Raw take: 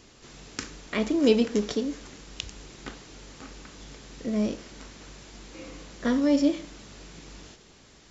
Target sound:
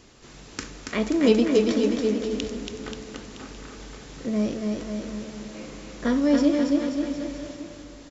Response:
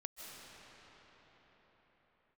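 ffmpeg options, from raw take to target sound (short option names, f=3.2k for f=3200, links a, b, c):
-filter_complex "[0:a]aecho=1:1:280|532|758.8|962.9|1147:0.631|0.398|0.251|0.158|0.1,asplit=2[a][b];[1:a]atrim=start_sample=2205,lowpass=2.6k[c];[b][c]afir=irnorm=-1:irlink=0,volume=-7.5dB[d];[a][d]amix=inputs=2:normalize=0"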